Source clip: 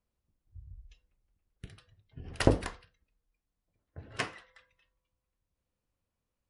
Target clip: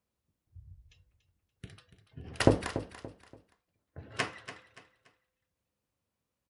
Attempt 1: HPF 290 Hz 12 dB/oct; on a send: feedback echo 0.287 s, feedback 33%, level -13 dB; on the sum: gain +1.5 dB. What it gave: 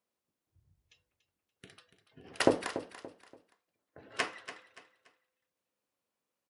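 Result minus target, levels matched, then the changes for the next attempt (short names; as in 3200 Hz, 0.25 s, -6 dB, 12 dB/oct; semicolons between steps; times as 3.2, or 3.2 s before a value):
125 Hz band -12.5 dB
change: HPF 84 Hz 12 dB/oct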